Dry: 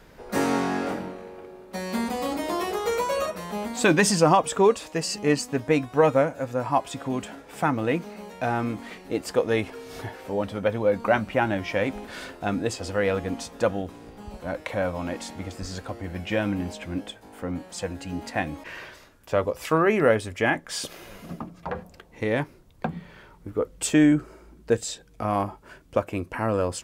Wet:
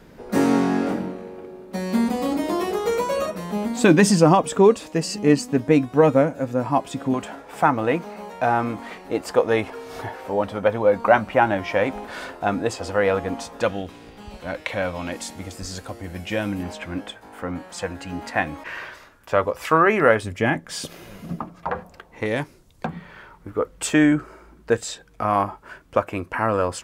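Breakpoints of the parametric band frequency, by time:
parametric band +8 dB 1.9 octaves
230 Hz
from 0:07.14 910 Hz
from 0:13.61 3,000 Hz
from 0:15.12 11,000 Hz
from 0:16.63 1,300 Hz
from 0:20.23 150 Hz
from 0:21.39 1,100 Hz
from 0:22.26 7,400 Hz
from 0:22.86 1,300 Hz

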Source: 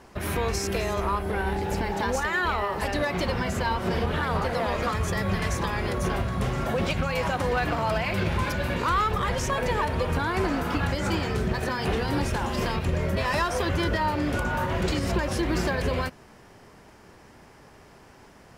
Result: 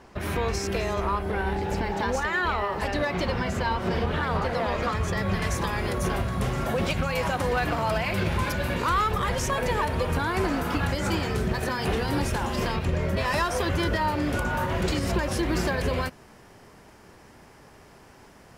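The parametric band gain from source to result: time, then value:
parametric band 12,000 Hz 1.1 octaves
0:05.16 −7 dB
0:05.61 +4.5 dB
0:12.33 +4.5 dB
0:13.01 −5 dB
0:13.31 +3 dB

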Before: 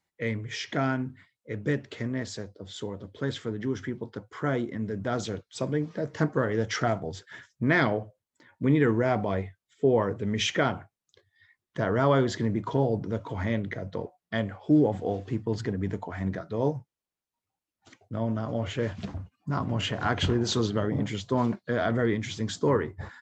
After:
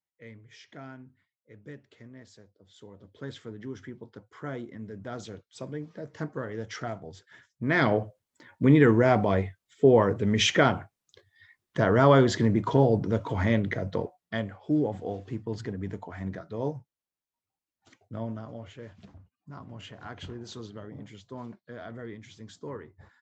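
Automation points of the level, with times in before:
0:02.67 −17 dB
0:03.15 −8.5 dB
0:07.49 −8.5 dB
0:07.95 +4 dB
0:13.96 +4 dB
0:14.54 −4.5 dB
0:18.20 −4.5 dB
0:18.76 −15 dB

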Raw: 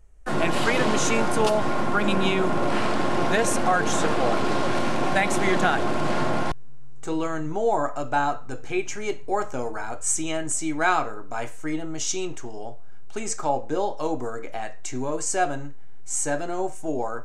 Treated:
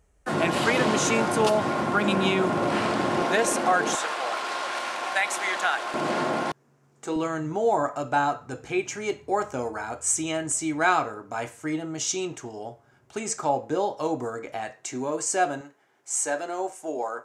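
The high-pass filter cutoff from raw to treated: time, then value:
80 Hz
from 0:03.22 250 Hz
from 0:03.95 890 Hz
from 0:05.94 220 Hz
from 0:07.16 60 Hz
from 0:14.72 180 Hz
from 0:15.61 400 Hz

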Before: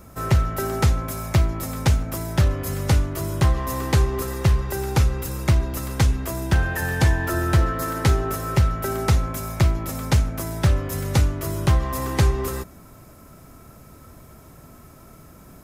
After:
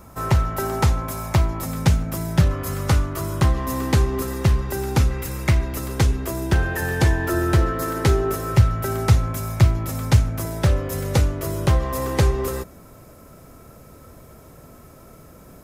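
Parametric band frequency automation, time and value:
parametric band +6.5 dB 0.57 octaves
930 Hz
from 0:01.65 170 Hz
from 0:02.51 1,200 Hz
from 0:03.42 250 Hz
from 0:05.11 2,100 Hz
from 0:05.77 390 Hz
from 0:08.52 110 Hz
from 0:10.45 500 Hz

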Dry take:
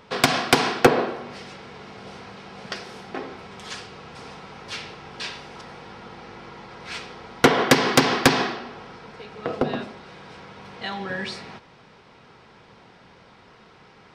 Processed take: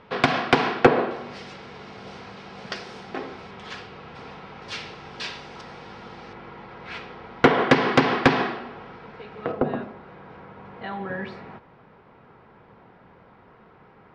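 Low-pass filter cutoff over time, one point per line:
2,900 Hz
from 0:01.11 6,100 Hz
from 0:03.51 3,400 Hz
from 0:04.62 6,200 Hz
from 0:06.33 2,700 Hz
from 0:09.52 1,600 Hz

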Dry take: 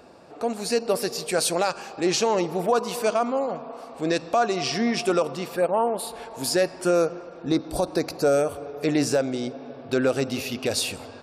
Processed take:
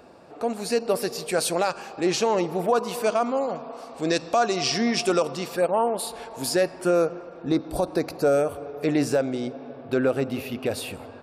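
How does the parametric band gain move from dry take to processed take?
parametric band 5,900 Hz 1.5 octaves
0:02.99 −3.5 dB
0:03.47 +4 dB
0:06.01 +4 dB
0:06.83 −6.5 dB
0:09.60 −6.5 dB
0:10.16 −14 dB

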